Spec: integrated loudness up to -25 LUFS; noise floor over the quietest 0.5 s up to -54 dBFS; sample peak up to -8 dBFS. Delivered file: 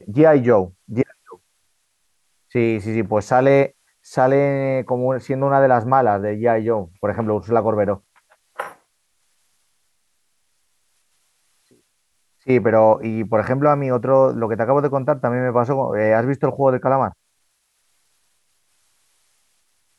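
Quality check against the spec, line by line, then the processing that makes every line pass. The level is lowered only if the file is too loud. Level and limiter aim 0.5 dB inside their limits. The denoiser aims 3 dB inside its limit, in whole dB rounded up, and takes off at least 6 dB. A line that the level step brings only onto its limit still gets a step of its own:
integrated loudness -18.5 LUFS: fail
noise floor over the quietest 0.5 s -67 dBFS: pass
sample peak -3.0 dBFS: fail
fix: trim -7 dB

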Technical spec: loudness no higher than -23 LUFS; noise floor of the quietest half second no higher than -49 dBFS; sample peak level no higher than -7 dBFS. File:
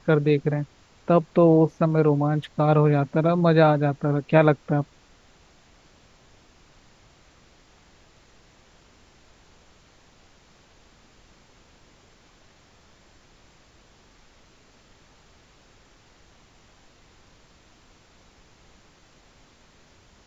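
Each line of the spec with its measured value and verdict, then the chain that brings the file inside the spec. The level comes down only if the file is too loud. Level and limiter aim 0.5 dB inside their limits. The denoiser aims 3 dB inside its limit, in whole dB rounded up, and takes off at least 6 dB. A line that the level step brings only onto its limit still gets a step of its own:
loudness -21.0 LUFS: fail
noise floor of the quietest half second -56 dBFS: pass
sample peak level -4.0 dBFS: fail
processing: trim -2.5 dB; peak limiter -7.5 dBFS

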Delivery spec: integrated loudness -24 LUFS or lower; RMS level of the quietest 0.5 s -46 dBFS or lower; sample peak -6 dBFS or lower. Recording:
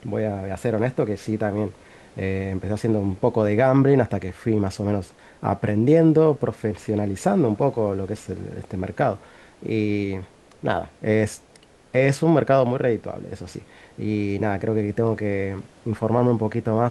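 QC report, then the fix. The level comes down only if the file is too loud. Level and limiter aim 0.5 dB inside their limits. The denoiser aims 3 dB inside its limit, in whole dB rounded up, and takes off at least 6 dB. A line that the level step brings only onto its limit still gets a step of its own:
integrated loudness -22.5 LUFS: fail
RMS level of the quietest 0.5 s -52 dBFS: pass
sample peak -5.5 dBFS: fail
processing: trim -2 dB

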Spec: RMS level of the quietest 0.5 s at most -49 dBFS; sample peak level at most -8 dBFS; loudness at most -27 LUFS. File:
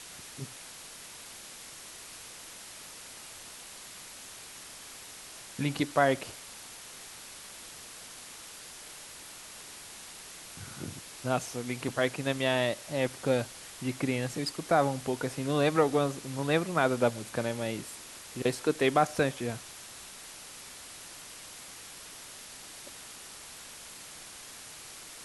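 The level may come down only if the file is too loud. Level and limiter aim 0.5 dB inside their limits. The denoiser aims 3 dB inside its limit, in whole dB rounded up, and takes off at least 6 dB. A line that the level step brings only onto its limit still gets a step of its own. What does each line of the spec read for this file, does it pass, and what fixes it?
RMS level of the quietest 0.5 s -47 dBFS: fail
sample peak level -10.5 dBFS: pass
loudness -31.5 LUFS: pass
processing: noise reduction 6 dB, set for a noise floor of -47 dBFS

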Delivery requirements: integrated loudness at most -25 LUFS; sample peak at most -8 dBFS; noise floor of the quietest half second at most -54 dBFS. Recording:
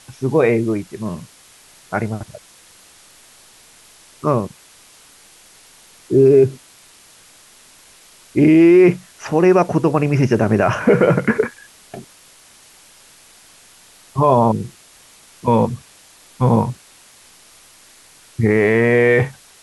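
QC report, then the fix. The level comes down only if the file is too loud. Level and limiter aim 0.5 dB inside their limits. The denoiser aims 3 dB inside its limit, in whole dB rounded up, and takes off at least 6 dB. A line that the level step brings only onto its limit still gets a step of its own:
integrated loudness -16.0 LUFS: fail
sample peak -3.5 dBFS: fail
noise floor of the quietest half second -47 dBFS: fail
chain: trim -9.5 dB

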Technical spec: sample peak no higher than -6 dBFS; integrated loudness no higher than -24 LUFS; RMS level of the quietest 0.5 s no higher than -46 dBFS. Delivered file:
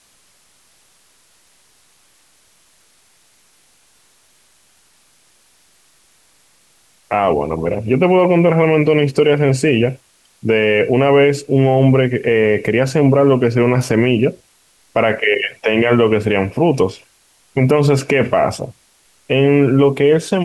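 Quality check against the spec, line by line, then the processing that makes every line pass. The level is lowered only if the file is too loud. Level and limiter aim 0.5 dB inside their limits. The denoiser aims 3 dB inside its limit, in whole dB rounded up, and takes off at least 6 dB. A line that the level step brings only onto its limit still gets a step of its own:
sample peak -2.5 dBFS: fail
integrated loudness -14.5 LUFS: fail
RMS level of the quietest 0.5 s -55 dBFS: pass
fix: trim -10 dB

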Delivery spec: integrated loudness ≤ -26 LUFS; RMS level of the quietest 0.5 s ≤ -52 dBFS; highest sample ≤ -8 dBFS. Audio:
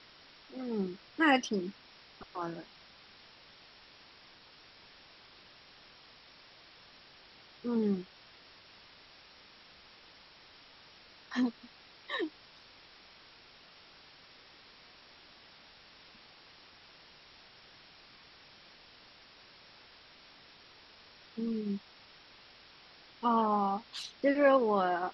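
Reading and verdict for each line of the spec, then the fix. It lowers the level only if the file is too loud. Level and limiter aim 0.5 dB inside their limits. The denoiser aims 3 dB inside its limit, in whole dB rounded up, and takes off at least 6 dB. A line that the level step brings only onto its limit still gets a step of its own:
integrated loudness -32.5 LUFS: pass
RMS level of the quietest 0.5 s -58 dBFS: pass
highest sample -14.0 dBFS: pass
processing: none needed

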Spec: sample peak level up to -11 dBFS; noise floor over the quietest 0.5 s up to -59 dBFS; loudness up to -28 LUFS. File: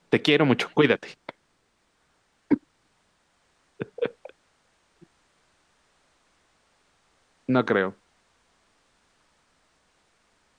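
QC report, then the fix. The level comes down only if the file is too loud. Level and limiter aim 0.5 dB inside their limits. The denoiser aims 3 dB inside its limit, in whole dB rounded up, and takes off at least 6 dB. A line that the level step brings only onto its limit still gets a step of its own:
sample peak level -6.0 dBFS: fail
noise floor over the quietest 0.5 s -69 dBFS: pass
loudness -24.5 LUFS: fail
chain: trim -4 dB; peak limiter -11.5 dBFS

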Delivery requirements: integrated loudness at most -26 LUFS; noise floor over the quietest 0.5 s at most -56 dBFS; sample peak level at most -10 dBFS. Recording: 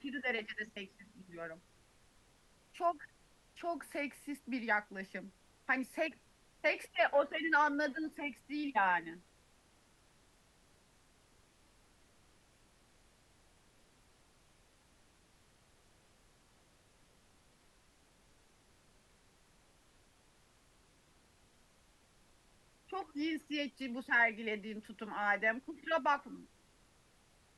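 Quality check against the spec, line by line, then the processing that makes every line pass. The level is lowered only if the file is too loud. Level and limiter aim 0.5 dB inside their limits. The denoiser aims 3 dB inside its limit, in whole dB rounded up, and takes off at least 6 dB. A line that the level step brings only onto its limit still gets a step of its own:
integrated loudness -36.0 LUFS: pass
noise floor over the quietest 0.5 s -68 dBFS: pass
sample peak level -18.5 dBFS: pass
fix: none needed

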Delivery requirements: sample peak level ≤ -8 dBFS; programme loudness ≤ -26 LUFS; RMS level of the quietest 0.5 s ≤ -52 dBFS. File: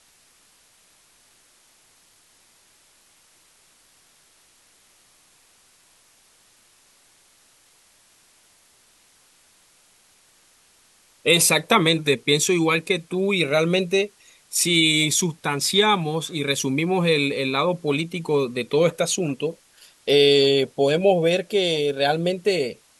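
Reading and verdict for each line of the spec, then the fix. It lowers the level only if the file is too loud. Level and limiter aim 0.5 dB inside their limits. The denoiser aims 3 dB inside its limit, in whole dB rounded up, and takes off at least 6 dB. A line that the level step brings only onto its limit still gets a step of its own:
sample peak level -4.0 dBFS: fail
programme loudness -20.5 LUFS: fail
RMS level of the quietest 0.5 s -58 dBFS: pass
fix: trim -6 dB

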